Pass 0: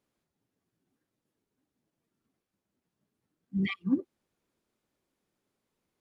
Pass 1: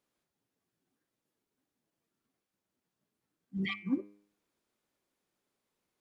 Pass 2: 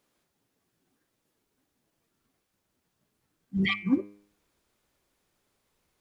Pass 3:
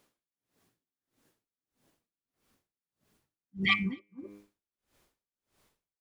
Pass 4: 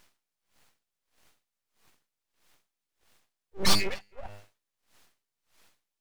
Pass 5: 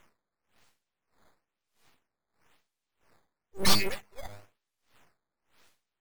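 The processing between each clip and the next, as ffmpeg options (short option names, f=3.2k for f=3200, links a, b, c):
-af "lowshelf=f=340:g=-7,bandreject=f=101.9:t=h:w=4,bandreject=f=203.8:t=h:w=4,bandreject=f=305.7:t=h:w=4,bandreject=f=407.6:t=h:w=4,bandreject=f=509.5:t=h:w=4,bandreject=f=611.4:t=h:w=4,bandreject=f=713.3:t=h:w=4,bandreject=f=815.2:t=h:w=4,bandreject=f=917.1:t=h:w=4,bandreject=f=1.019k:t=h:w=4,bandreject=f=1.1209k:t=h:w=4,bandreject=f=1.2228k:t=h:w=4,bandreject=f=1.3247k:t=h:w=4,bandreject=f=1.4266k:t=h:w=4,bandreject=f=1.5285k:t=h:w=4,bandreject=f=1.6304k:t=h:w=4,bandreject=f=1.7323k:t=h:w=4,bandreject=f=1.8342k:t=h:w=4,bandreject=f=1.9361k:t=h:w=4,bandreject=f=2.038k:t=h:w=4,bandreject=f=2.1399k:t=h:w=4,bandreject=f=2.2418k:t=h:w=4,bandreject=f=2.3437k:t=h:w=4,bandreject=f=2.4456k:t=h:w=4,bandreject=f=2.5475k:t=h:w=4,bandreject=f=2.6494k:t=h:w=4,bandreject=f=2.7513k:t=h:w=4,bandreject=f=2.8532k:t=h:w=4,bandreject=f=2.9551k:t=h:w=4,bandreject=f=3.057k:t=h:w=4"
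-af "asubboost=boost=3.5:cutoff=110,volume=9dB"
-filter_complex "[0:a]asplit=2[a][b];[b]aecho=0:1:257:0.562[c];[a][c]amix=inputs=2:normalize=0,aeval=exprs='val(0)*pow(10,-35*(0.5-0.5*cos(2*PI*1.6*n/s))/20)':c=same,volume=5dB"
-filter_complex "[0:a]asplit=2[a][b];[b]highpass=f=720:p=1,volume=16dB,asoftclip=type=tanh:threshold=-11.5dB[c];[a][c]amix=inputs=2:normalize=0,lowpass=f=4.6k:p=1,volume=-6dB,aeval=exprs='abs(val(0))':c=same,volume=3dB"
-af "acrusher=samples=9:mix=1:aa=0.000001:lfo=1:lforange=14.4:lforate=1"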